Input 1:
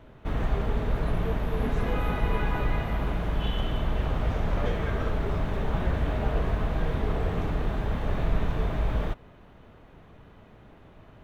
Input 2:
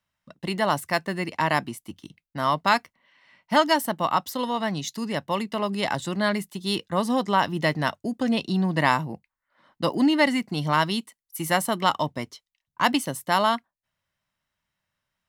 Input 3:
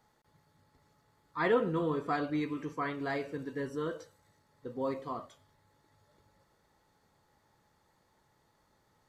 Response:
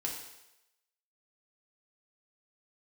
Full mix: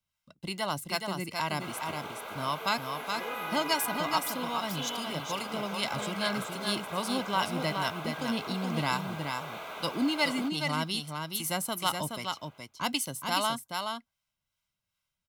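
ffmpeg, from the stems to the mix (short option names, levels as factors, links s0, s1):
-filter_complex "[0:a]highpass=830,highshelf=f=7400:g=11,adelay=1350,volume=0.944,asplit=2[s0][s1];[s1]volume=0.15[s2];[1:a]highshelf=f=2300:g=11,acrossover=split=580[s3][s4];[s3]aeval=exprs='val(0)*(1-0.5/2+0.5/2*cos(2*PI*2.5*n/s))':c=same[s5];[s4]aeval=exprs='val(0)*(1-0.5/2-0.5/2*cos(2*PI*2.5*n/s))':c=same[s6];[s5][s6]amix=inputs=2:normalize=0,lowshelf=f=130:g=8.5,volume=0.355,asplit=2[s7][s8];[s8]volume=0.562[s9];[2:a]adelay=1750,volume=0.178[s10];[s2][s9]amix=inputs=2:normalize=0,aecho=0:1:422:1[s11];[s0][s7][s10][s11]amix=inputs=4:normalize=0,asuperstop=centerf=1800:order=8:qfactor=6.8"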